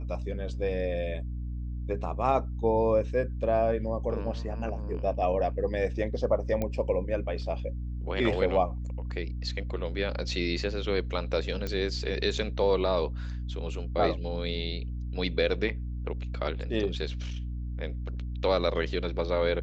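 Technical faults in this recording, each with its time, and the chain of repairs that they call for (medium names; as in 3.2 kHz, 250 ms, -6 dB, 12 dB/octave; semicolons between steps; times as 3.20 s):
hum 60 Hz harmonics 5 -34 dBFS
6.62 s: pop -17 dBFS
11.67 s: pop -19 dBFS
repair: de-click; de-hum 60 Hz, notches 5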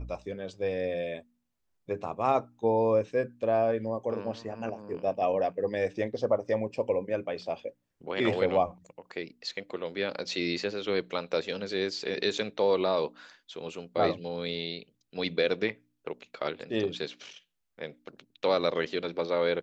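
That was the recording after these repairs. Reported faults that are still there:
nothing left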